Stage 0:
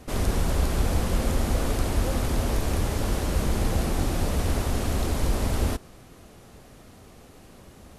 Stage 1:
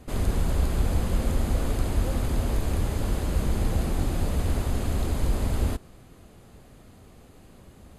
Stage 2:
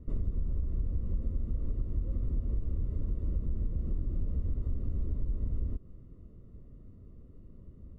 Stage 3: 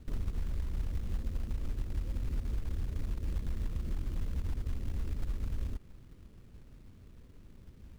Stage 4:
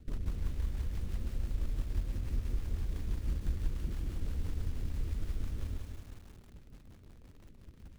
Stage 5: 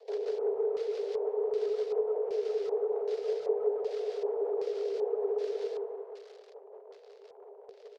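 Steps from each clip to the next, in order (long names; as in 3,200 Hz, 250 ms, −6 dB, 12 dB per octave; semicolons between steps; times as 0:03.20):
low-shelf EQ 280 Hz +5 dB; notch filter 5,600 Hz, Q 7.2; level −4.5 dB
low-shelf EQ 74 Hz +9 dB; downward compressor 10 to 1, threshold −23 dBFS, peak gain reduction 12.5 dB; moving average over 55 samples; level −3.5 dB
log-companded quantiser 6 bits; level −3 dB
rotating-speaker cabinet horn 6 Hz; feedback echo at a low word length 182 ms, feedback 55%, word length 9 bits, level −5 dB
frequency shifter +390 Hz; far-end echo of a speakerphone 110 ms, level −12 dB; auto-filter low-pass square 1.3 Hz 940–4,800 Hz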